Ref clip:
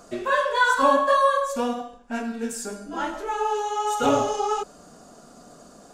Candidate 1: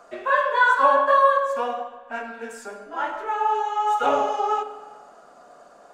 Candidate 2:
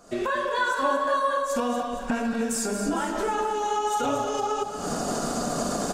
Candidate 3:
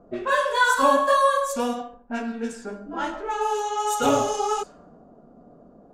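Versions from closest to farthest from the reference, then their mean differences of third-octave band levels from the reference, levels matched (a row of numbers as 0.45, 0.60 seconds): 3, 1, 2; 2.5, 6.0, 9.5 decibels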